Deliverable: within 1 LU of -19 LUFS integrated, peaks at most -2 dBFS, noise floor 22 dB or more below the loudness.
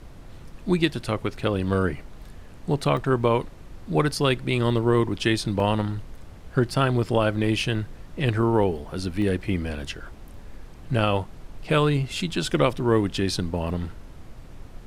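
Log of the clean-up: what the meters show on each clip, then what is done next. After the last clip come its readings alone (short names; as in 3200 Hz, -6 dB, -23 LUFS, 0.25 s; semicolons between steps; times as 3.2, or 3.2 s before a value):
dropouts 3; longest dropout 1.4 ms; noise floor -44 dBFS; noise floor target -47 dBFS; loudness -24.5 LUFS; peak -6.5 dBFS; loudness target -19.0 LUFS
-> interpolate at 2.97/5.6/9.22, 1.4 ms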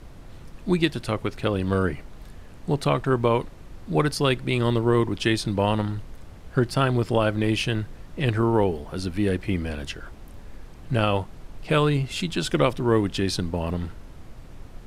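dropouts 0; noise floor -44 dBFS; noise floor target -47 dBFS
-> noise print and reduce 6 dB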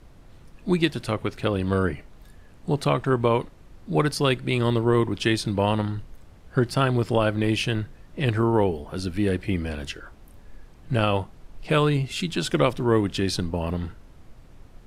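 noise floor -50 dBFS; loudness -24.5 LUFS; peak -6.5 dBFS; loudness target -19.0 LUFS
-> gain +5.5 dB; limiter -2 dBFS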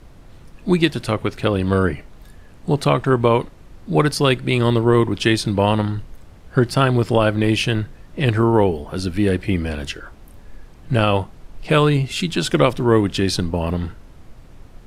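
loudness -19.0 LUFS; peak -2.0 dBFS; noise floor -44 dBFS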